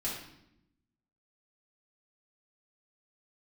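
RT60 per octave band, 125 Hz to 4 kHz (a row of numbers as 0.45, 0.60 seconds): 1.2, 1.2, 0.90, 0.75, 0.70, 0.65 seconds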